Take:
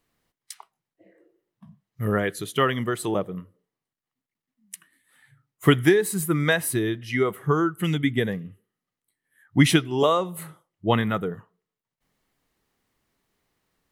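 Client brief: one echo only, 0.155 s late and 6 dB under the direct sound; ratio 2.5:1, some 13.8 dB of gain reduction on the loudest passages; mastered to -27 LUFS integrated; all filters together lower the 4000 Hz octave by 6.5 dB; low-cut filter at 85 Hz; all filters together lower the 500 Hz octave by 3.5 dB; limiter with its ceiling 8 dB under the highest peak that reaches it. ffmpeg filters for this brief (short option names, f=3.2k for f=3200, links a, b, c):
-af "highpass=85,equalizer=f=500:t=o:g=-4.5,equalizer=f=4k:t=o:g=-9,acompressor=threshold=-35dB:ratio=2.5,alimiter=level_in=1.5dB:limit=-24dB:level=0:latency=1,volume=-1.5dB,aecho=1:1:155:0.501,volume=9.5dB"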